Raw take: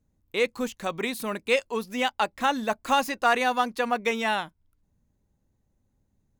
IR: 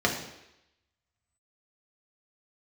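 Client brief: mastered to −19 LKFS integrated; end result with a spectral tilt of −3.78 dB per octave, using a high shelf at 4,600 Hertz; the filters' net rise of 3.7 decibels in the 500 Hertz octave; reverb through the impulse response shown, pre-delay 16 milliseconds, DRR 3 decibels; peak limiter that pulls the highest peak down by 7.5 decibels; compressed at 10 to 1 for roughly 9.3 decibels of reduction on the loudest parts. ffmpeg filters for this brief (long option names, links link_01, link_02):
-filter_complex "[0:a]equalizer=frequency=500:width_type=o:gain=4,highshelf=frequency=4600:gain=8,acompressor=threshold=-24dB:ratio=10,alimiter=limit=-21dB:level=0:latency=1,asplit=2[link_01][link_02];[1:a]atrim=start_sample=2205,adelay=16[link_03];[link_02][link_03]afir=irnorm=-1:irlink=0,volume=-16.5dB[link_04];[link_01][link_04]amix=inputs=2:normalize=0,volume=11.5dB"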